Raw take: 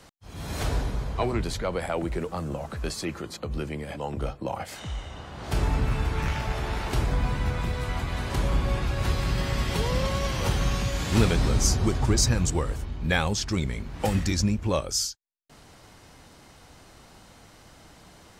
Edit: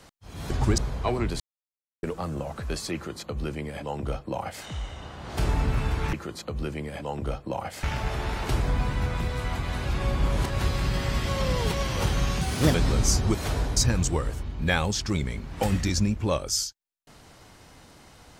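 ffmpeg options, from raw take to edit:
ffmpeg -i in.wav -filter_complex "[0:a]asplit=15[link_01][link_02][link_03][link_04][link_05][link_06][link_07][link_08][link_09][link_10][link_11][link_12][link_13][link_14][link_15];[link_01]atrim=end=0.502[link_16];[link_02]atrim=start=11.908:end=12.192[link_17];[link_03]atrim=start=0.918:end=1.54,asetpts=PTS-STARTPTS,afade=type=out:start_time=0.618:duration=0.004:curve=hsin[link_18];[link_04]atrim=start=1.54:end=2.17,asetpts=PTS-STARTPTS,volume=0[link_19];[link_05]atrim=start=2.17:end=6.272,asetpts=PTS-STARTPTS,afade=type=in:duration=0.004:curve=hsin[link_20];[link_06]atrim=start=3.078:end=4.782[link_21];[link_07]atrim=start=6.268:end=8.302[link_22];[link_08]atrim=start=8.298:end=8.942,asetpts=PTS-STARTPTS,areverse[link_23];[link_09]atrim=start=8.938:end=9.732[link_24];[link_10]atrim=start=9.728:end=10.182,asetpts=PTS-STARTPTS,areverse[link_25];[link_11]atrim=start=10.178:end=10.854[link_26];[link_12]atrim=start=10.85:end=11.31,asetpts=PTS-STARTPTS,asetrate=60417,aresample=44100,atrim=end_sample=14807,asetpts=PTS-STARTPTS[link_27];[link_13]atrim=start=11.306:end=11.912[link_28];[link_14]atrim=start=0.498:end=0.922[link_29];[link_15]atrim=start=12.188[link_30];[link_16][link_17]acrossfade=duration=0.004:curve1=hsin:curve2=hsin[link_31];[link_18][link_19][link_20]concat=n=3:v=0:a=1[link_32];[link_31][link_32]acrossfade=duration=0.004:curve1=hsin:curve2=hsin[link_33];[link_33][link_21]acrossfade=duration=0.004:curve1=hsin:curve2=hsin[link_34];[link_34][link_22]acrossfade=duration=0.004:curve1=hsin:curve2=hsin[link_35];[link_35][link_23]acrossfade=duration=0.004:curve1=hsin:curve2=hsin[link_36];[link_36][link_24]acrossfade=duration=0.004:curve1=hsin:curve2=hsin[link_37];[link_37][link_25]acrossfade=duration=0.004:curve1=hsin:curve2=hsin[link_38];[link_38][link_26]acrossfade=duration=0.004:curve1=hsin:curve2=hsin[link_39];[link_39][link_27]acrossfade=duration=0.004:curve1=hsin:curve2=hsin[link_40];[link_40][link_28]acrossfade=duration=0.004:curve1=hsin:curve2=hsin[link_41];[link_41][link_29]acrossfade=duration=0.004:curve1=hsin:curve2=hsin[link_42];[link_42][link_30]acrossfade=duration=0.004:curve1=hsin:curve2=hsin" out.wav

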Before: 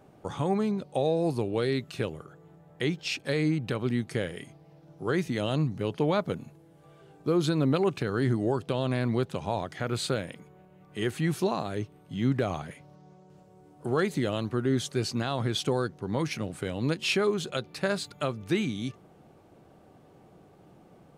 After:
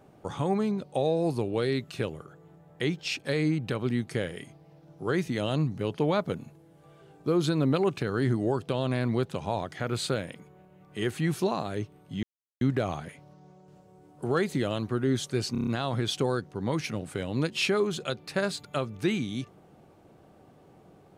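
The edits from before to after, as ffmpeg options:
ffmpeg -i in.wav -filter_complex "[0:a]asplit=7[link_01][link_02][link_03][link_04][link_05][link_06][link_07];[link_01]atrim=end=12.23,asetpts=PTS-STARTPTS,afade=type=out:start_time=12.226:duration=0.004:curve=hsin,apad=pad_dur=0.38[link_08];[link_02]atrim=start=12.23:end=15.172,asetpts=PTS-STARTPTS,afade=type=in:duration=0.004:curve=hsin[link_09];[link_03]atrim=start=15.138:end=15.172[link_10];[link_04]atrim=start=15.138:end=15.172[link_11];[link_05]atrim=start=15.138:end=15.172[link_12];[link_06]atrim=start=15.138:end=15.172[link_13];[link_07]atrim=start=15.138[link_14];[link_08][link_09]concat=n=2:v=0:a=1[link_15];[link_15][link_10]acrossfade=duration=0.004:curve1=hsin:curve2=hsin[link_16];[link_16][link_11]acrossfade=duration=0.004:curve1=hsin:curve2=hsin[link_17];[link_17][link_12]acrossfade=duration=0.004:curve1=hsin:curve2=hsin[link_18];[link_18][link_13]acrossfade=duration=0.004:curve1=hsin:curve2=hsin[link_19];[link_19][link_14]acrossfade=duration=0.004:curve1=hsin:curve2=hsin" out.wav

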